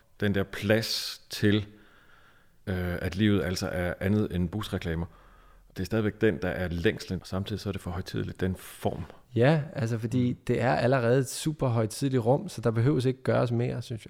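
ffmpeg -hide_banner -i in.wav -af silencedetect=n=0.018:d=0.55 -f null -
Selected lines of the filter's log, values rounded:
silence_start: 1.64
silence_end: 2.67 | silence_duration: 1.04
silence_start: 5.05
silence_end: 5.76 | silence_duration: 0.71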